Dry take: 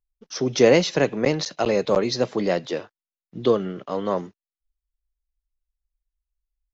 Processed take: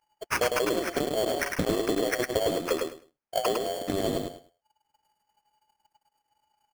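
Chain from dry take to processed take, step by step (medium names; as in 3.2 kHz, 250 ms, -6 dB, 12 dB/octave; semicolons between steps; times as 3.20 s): four frequency bands reordered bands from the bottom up 2413; treble shelf 6.2 kHz +11 dB; compression 6:1, threshold -24 dBFS, peak gain reduction 15 dB; peak limiter -20 dBFS, peak gain reduction 7 dB; sample-rate reducer 3.8 kHz, jitter 0%; transient shaper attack +7 dB, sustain -9 dB; feedback delay 104 ms, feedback 19%, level -4 dB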